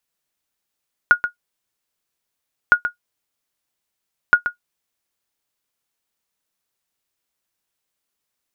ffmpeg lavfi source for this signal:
-f lavfi -i "aevalsrc='0.841*(sin(2*PI*1440*mod(t,1.61))*exp(-6.91*mod(t,1.61)/0.11)+0.299*sin(2*PI*1440*max(mod(t,1.61)-0.13,0))*exp(-6.91*max(mod(t,1.61)-0.13,0)/0.11))':d=4.83:s=44100"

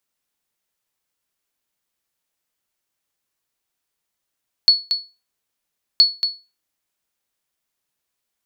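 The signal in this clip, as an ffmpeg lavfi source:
-f lavfi -i "aevalsrc='0.631*(sin(2*PI*4400*mod(t,1.32))*exp(-6.91*mod(t,1.32)/0.28)+0.376*sin(2*PI*4400*max(mod(t,1.32)-0.23,0))*exp(-6.91*max(mod(t,1.32)-0.23,0)/0.28))':d=2.64:s=44100"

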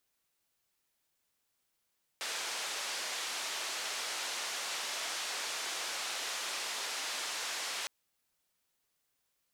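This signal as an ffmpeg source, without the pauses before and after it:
-f lavfi -i "anoisesrc=c=white:d=5.66:r=44100:seed=1,highpass=f=530,lowpass=f=6200,volume=-27.5dB"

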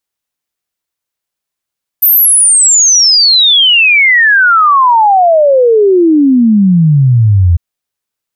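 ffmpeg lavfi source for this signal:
-f lavfi -i "aevalsrc='0.668*clip(min(t,5.55-t)/0.01,0,1)*sin(2*PI*14000*5.55/log(82/14000)*(exp(log(82/14000)*t/5.55)-1))':d=5.55:s=44100"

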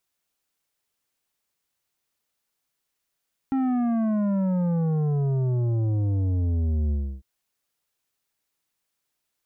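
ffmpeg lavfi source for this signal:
-f lavfi -i "aevalsrc='0.0794*clip((3.7-t)/0.31,0,1)*tanh(2.99*sin(2*PI*270*3.7/log(65/270)*(exp(log(65/270)*t/3.7)-1)))/tanh(2.99)':d=3.7:s=44100"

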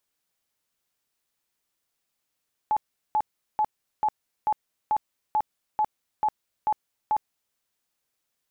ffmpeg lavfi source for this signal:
-f lavfi -i "aevalsrc='0.106*sin(2*PI*855*mod(t,0.44))*lt(mod(t,0.44),48/855)':d=4.84:s=44100"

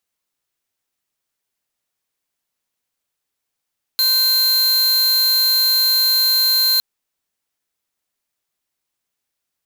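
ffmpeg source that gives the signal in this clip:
-f lavfi -i "aevalsrc='0.168*(2*lt(mod(4150*t,1),0.5)-1)':d=2.81:s=44100"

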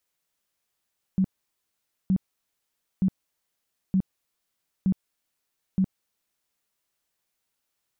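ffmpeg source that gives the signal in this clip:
-f lavfi -i "aevalsrc='0.126*sin(2*PI*189*mod(t,0.92))*lt(mod(t,0.92),12/189)':d=5.52:s=44100"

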